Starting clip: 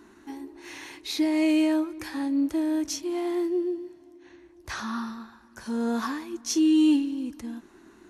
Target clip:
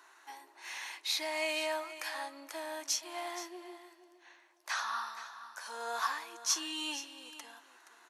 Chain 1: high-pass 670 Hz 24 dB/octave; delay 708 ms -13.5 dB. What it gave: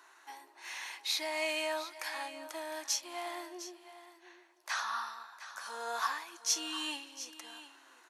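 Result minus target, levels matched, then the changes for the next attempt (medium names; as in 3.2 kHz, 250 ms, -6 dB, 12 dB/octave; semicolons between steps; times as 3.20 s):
echo 235 ms late
change: delay 473 ms -13.5 dB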